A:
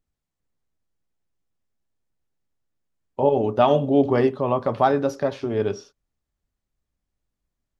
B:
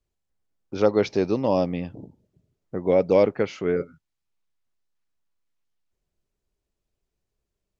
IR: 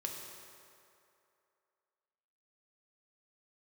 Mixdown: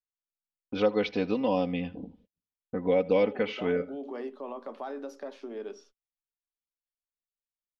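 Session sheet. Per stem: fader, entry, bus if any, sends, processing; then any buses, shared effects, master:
-12.5 dB, 0.00 s, no send, no echo send, peak limiter -13 dBFS, peak gain reduction 9 dB; steep high-pass 220 Hz 48 dB/octave
+0.5 dB, 0.00 s, no send, echo send -22 dB, resonant low-pass 3.2 kHz, resonance Q 2.4; comb 4 ms, depth 78%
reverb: none
echo: delay 79 ms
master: gate -57 dBFS, range -35 dB; compression 1.5:1, threshold -37 dBFS, peak gain reduction 10 dB

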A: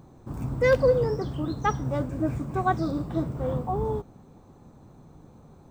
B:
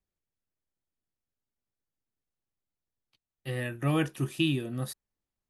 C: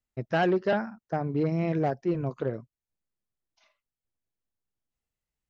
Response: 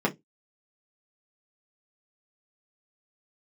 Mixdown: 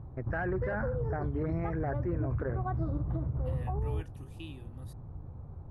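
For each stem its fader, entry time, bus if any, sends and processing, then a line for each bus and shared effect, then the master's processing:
-2.0 dB, 0.00 s, no send, low-pass 1.4 kHz 12 dB/octave; resonant low shelf 140 Hz +12 dB, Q 1.5; compression, threshold -25 dBFS, peak gain reduction 12 dB
-19.0 dB, 0.00 s, no send, none
-3.0 dB, 0.00 s, no send, resonant high shelf 2.4 kHz -12 dB, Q 3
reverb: none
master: peak limiter -24.5 dBFS, peak gain reduction 10.5 dB

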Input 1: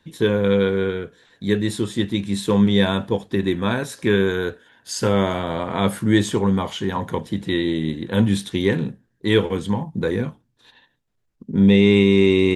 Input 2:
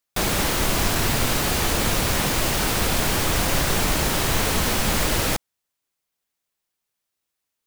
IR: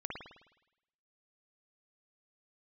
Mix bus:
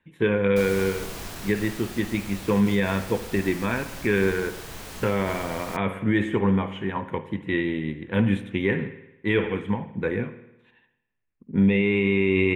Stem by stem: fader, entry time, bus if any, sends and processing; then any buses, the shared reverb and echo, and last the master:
-1.5 dB, 0.00 s, send -9 dB, resonant high shelf 3.4 kHz -11.5 dB, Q 3; upward expansion 1.5:1, over -32 dBFS
-10.5 dB, 0.40 s, no send, auto duck -7 dB, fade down 1.95 s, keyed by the first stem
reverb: on, RT60 0.90 s, pre-delay 52 ms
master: peak limiter -11.5 dBFS, peak gain reduction 9 dB

